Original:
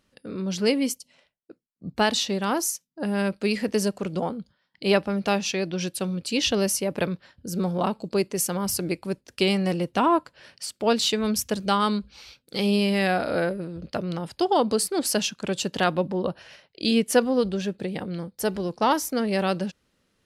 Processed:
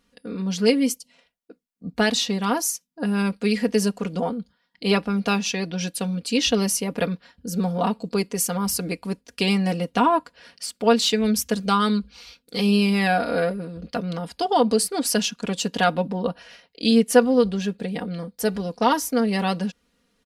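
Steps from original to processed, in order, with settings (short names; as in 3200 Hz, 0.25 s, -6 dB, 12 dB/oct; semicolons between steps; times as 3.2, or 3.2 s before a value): comb 4.2 ms, depth 75%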